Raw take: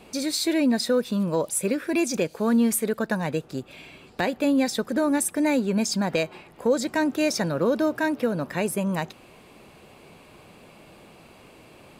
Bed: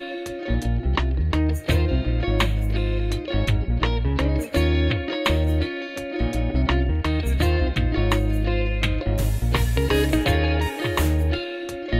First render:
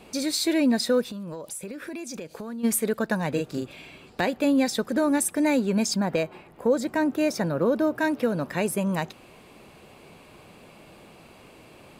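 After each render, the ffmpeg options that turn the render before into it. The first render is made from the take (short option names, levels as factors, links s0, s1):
-filter_complex "[0:a]asplit=3[s0][s1][s2];[s0]afade=t=out:st=1.06:d=0.02[s3];[s1]acompressor=threshold=0.0251:ratio=12:attack=3.2:release=140:knee=1:detection=peak,afade=t=in:st=1.06:d=0.02,afade=t=out:st=2.63:d=0.02[s4];[s2]afade=t=in:st=2.63:d=0.02[s5];[s3][s4][s5]amix=inputs=3:normalize=0,asettb=1/sr,asplit=3[s6][s7][s8];[s6]atrim=end=3.294[s9];[s7]atrim=start=3.29:end=3.73,asetpts=PTS-STARTPTS,afade=t=in:d=0.004:c=qsin,afade=t=out:st=0.436:d=0.004:c=qsin,asplit=2[s10][s11];[s11]adelay=41,volume=0.75[s12];[s10][s12]amix=inputs=2:normalize=0,atrim=end_sample=19404[s13];[s8]atrim=start=3.726[s14];[s9][s13]acrossfade=d=0.004:c1=hsin:c2=qsin[s15];[s15][s14]acrossfade=d=0.004:c1=qsin:c2=hsin,asettb=1/sr,asplit=3[s16][s17][s18];[s16]atrim=end=5.944[s19];[s17]atrim=start=5.94:end=8,asetpts=PTS-STARTPTS,afade=t=in:d=0.004:c=qsin,afade=t=out:st=2.056:d=0.004:c=qsin,equalizer=f=5300:w=0.45:g=-7[s20];[s18]atrim=start=7.996[s21];[s19][s20]acrossfade=d=0.004:c1=hsin:c2=qsin[s22];[s22][s21]acrossfade=d=0.004:c1=qsin:c2=hsin"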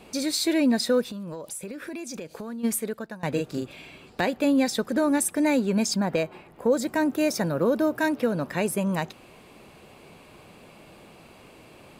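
-filter_complex "[0:a]asettb=1/sr,asplit=3[s0][s1][s2];[s0]atrim=end=6.724[s3];[s1]atrim=start=6.72:end=8.09,asetpts=PTS-STARTPTS,afade=t=in:d=0.004:c=qsin,afade=t=out:st=1.366:d=0.004:c=qsin,highshelf=f=5900:g=6.5[s4];[s2]atrim=start=8.086[s5];[s3][s4]acrossfade=d=0.004:c1=hsin:c2=qsin[s6];[s6][s5]acrossfade=d=0.004:c1=qsin:c2=hsin,asplit=2[s7][s8];[s7]atrim=end=3.23,asetpts=PTS-STARTPTS,afade=t=out:st=2.52:d=0.71:silence=0.1[s9];[s8]atrim=start=3.23,asetpts=PTS-STARTPTS,afade=t=in:d=0.004:c=hsin:silence=0.1[s10];[s9][s10]concat=n=2:v=0:a=1"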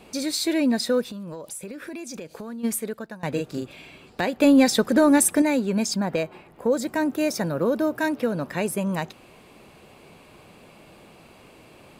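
-filter_complex "[0:a]asettb=1/sr,asplit=3[s0][s1][s2];[s0]atrim=end=4.404[s3];[s1]atrim=start=4.4:end=5.42,asetpts=PTS-STARTPTS,afade=t=in:d=0.004:c=qsin,afade=t=out:st=1.016:d=0.004:c=qsin,acontrast=58[s4];[s2]atrim=start=5.416[s5];[s3][s4]acrossfade=d=0.004:c1=hsin:c2=qsin[s6];[s6][s5]acrossfade=d=0.004:c1=qsin:c2=hsin"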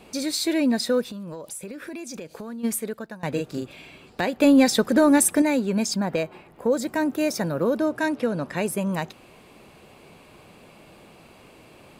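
-filter_complex "[0:a]asettb=1/sr,asplit=3[s0][s1][s2];[s0]atrim=end=7.784[s3];[s1]atrim=start=7.78:end=8.56,asetpts=PTS-STARTPTS,afade=t=in:d=0.004:c=qsin,afade=t=out:st=0.776:d=0.004:c=qsin,lowpass=f=11000:w=0.5412,lowpass=f=11000:w=1.3066[s4];[s2]atrim=start=8.556[s5];[s3][s4]acrossfade=d=0.004:c1=hsin:c2=qsin[s6];[s6][s5]acrossfade=d=0.004:c1=qsin:c2=hsin"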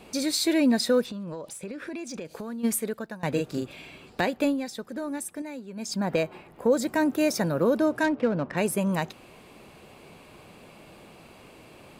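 -filter_complex "[0:a]asettb=1/sr,asplit=3[s0][s1][s2];[s0]atrim=end=1.064[s3];[s1]atrim=start=1.06:end=2.25,asetpts=PTS-STARTPTS,afade=t=in:d=0.004:c=qsin,afade=t=out:st=1.186:d=0.004:c=qsin,adynamicsmooth=sensitivity=6.5:basefreq=7500[s4];[s2]atrim=start=2.246[s5];[s3][s4]acrossfade=d=0.004:c1=hsin:c2=qsin[s6];[s6][s5]acrossfade=d=0.004:c1=qsin:c2=hsin,asplit=3[s7][s8][s9];[s7]afade=t=out:st=8.03:d=0.02[s10];[s8]adynamicsmooth=sensitivity=3.5:basefreq=1600,afade=t=in:st=8.03:d=0.02,afade=t=out:st=8.56:d=0.02[s11];[s9]afade=t=in:st=8.56:d=0.02[s12];[s10][s11][s12]amix=inputs=3:normalize=0,asplit=3[s13][s14][s15];[s13]atrim=end=4.58,asetpts=PTS-STARTPTS,afade=t=out:st=4.21:d=0.37:silence=0.158489[s16];[s14]atrim=start=4.58:end=5.76,asetpts=PTS-STARTPTS,volume=0.158[s17];[s15]atrim=start=5.76,asetpts=PTS-STARTPTS,afade=t=in:d=0.37:silence=0.158489[s18];[s16][s17][s18]concat=n=3:v=0:a=1"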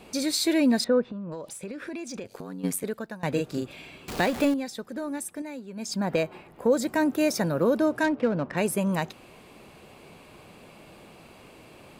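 -filter_complex "[0:a]asettb=1/sr,asplit=3[s0][s1][s2];[s0]atrim=end=0.844[s3];[s1]atrim=start=0.84:end=1.32,asetpts=PTS-STARTPTS,afade=t=in:d=0.004:c=qsin,afade=t=out:st=0.476:d=0.004:c=qsin,lowpass=1600[s4];[s2]atrim=start=1.316[s5];[s3][s4]acrossfade=d=0.004:c1=hsin:c2=qsin[s6];[s6][s5]acrossfade=d=0.004:c1=qsin:c2=hsin,asettb=1/sr,asplit=3[s7][s8][s9];[s7]atrim=end=2.234[s10];[s8]atrim=start=2.23:end=2.84,asetpts=PTS-STARTPTS,afade=t=in:d=0.004:c=qsin,afade=t=out:st=0.606:d=0.004:c=qsin,aeval=exprs='val(0)*sin(2*PI*47*n/s)':c=same[s11];[s9]atrim=start=2.836[s12];[s10][s11]acrossfade=d=0.004:c1=hsin:c2=qsin[s13];[s13][s12]acrossfade=d=0.004:c1=qsin:c2=hsin,asettb=1/sr,asplit=3[s14][s15][s16];[s14]atrim=end=4.084[s17];[s15]atrim=start=4.08:end=4.54,asetpts=PTS-STARTPTS,afade=t=in:d=0.004:c=qsin,afade=t=out:st=0.456:d=0.004:c=qsin,aeval=exprs='val(0)+0.5*0.0316*sgn(val(0))':c=same[s18];[s16]atrim=start=4.536[s19];[s17][s18]acrossfade=d=0.004:c1=hsin:c2=qsin[s20];[s20][s19]acrossfade=d=0.004:c1=qsin:c2=hsin"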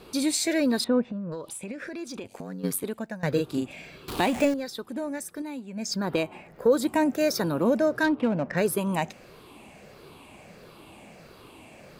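-af "afftfilt=real='re*pow(10,8/40*sin(2*PI*(0.59*log(max(b,1)*sr/1024/100)/log(2)-(-1.5)*(pts-256)/sr)))':imag='im*pow(10,8/40*sin(2*PI*(0.59*log(max(b,1)*sr/1024/100)/log(2)-(-1.5)*(pts-256)/sr)))':win_size=1024:overlap=0.75"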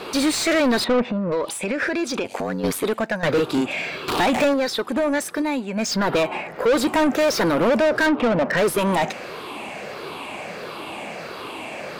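-filter_complex "[0:a]asplit=2[s0][s1];[s1]highpass=f=720:p=1,volume=22.4,asoftclip=type=tanh:threshold=0.282[s2];[s0][s2]amix=inputs=2:normalize=0,lowpass=f=2700:p=1,volume=0.501"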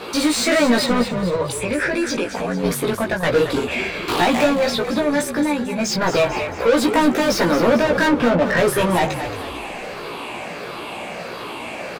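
-filter_complex "[0:a]asplit=2[s0][s1];[s1]adelay=17,volume=0.794[s2];[s0][s2]amix=inputs=2:normalize=0,asplit=7[s3][s4][s5][s6][s7][s8][s9];[s4]adelay=223,afreqshift=-44,volume=0.316[s10];[s5]adelay=446,afreqshift=-88,volume=0.162[s11];[s6]adelay=669,afreqshift=-132,volume=0.0822[s12];[s7]adelay=892,afreqshift=-176,volume=0.0422[s13];[s8]adelay=1115,afreqshift=-220,volume=0.0214[s14];[s9]adelay=1338,afreqshift=-264,volume=0.011[s15];[s3][s10][s11][s12][s13][s14][s15]amix=inputs=7:normalize=0"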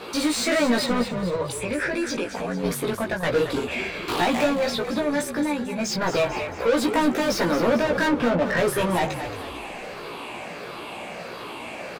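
-af "volume=0.562"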